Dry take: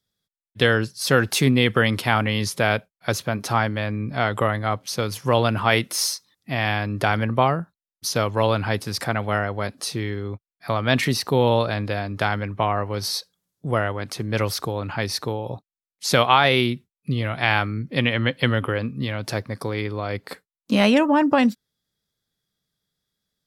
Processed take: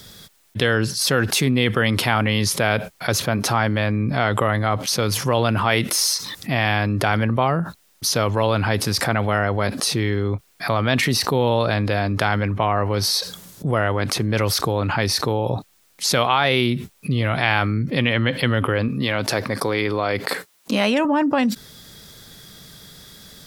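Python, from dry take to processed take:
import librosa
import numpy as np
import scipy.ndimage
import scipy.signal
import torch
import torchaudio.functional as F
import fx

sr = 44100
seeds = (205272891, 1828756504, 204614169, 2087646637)

y = fx.highpass(x, sr, hz=290.0, slope=6, at=(18.88, 21.05))
y = fx.env_flatten(y, sr, amount_pct=70)
y = y * librosa.db_to_amplitude(-3.5)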